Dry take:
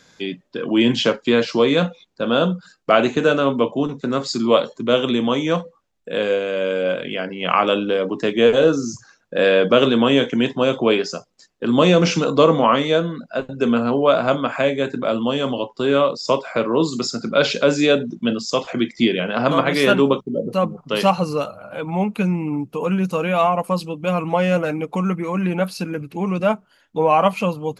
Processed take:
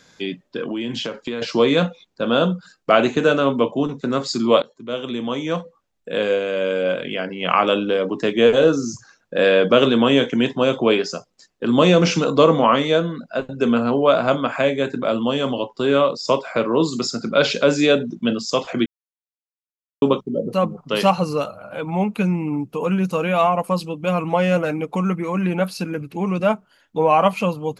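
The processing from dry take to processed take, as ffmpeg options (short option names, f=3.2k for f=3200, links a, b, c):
-filter_complex "[0:a]asettb=1/sr,asplit=3[a][b][c];[a]atrim=end=0.634[d];[b]atrim=start=0.63:end=1.42,asetpts=PTS-STARTPTS,afade=t=in:d=0.004:c=qsin,afade=t=out:st=0.786:d=0.004:c=qsin,acompressor=threshold=-23dB:ratio=6:attack=3.2:release=140:knee=1:detection=peak[e];[c]atrim=start=1.416[f];[d][e]acrossfade=d=0.004:c1=hsin:c2=qsin[g];[g][f]acrossfade=d=0.004:c1=qsin:c2=hsin,asplit=4[h][i][j][k];[h]atrim=end=4.62,asetpts=PTS-STARTPTS,afade=t=out:st=4.616:d=0.004:c=hsin:silence=0.149624[l];[i]atrim=start=4.62:end=18.86,asetpts=PTS-STARTPTS,afade=t=in:d=1.49:silence=0.149624,afade=t=out:st=14.236:d=0.004:c=hsin[m];[j]atrim=start=18.86:end=20.02,asetpts=PTS-STARTPTS,volume=0[n];[k]atrim=start=20.02,asetpts=PTS-STARTPTS,afade=t=in:d=0.004:c=hsin[o];[l][m][n][o]concat=n=4:v=0:a=1"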